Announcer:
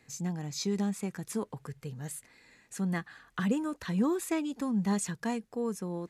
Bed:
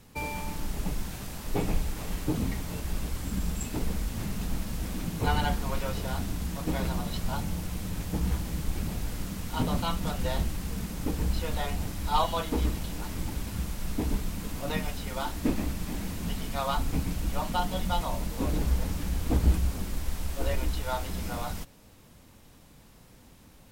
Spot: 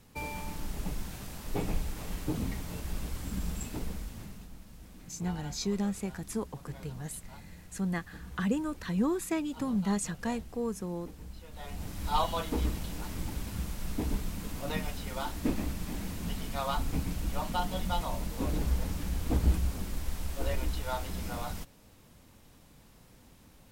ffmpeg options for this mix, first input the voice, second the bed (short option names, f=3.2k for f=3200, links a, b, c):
-filter_complex "[0:a]adelay=5000,volume=-0.5dB[a];[1:a]volume=10.5dB,afade=t=out:st=3.58:d=0.92:silence=0.211349,afade=t=in:st=11.52:d=0.55:silence=0.188365[b];[a][b]amix=inputs=2:normalize=0"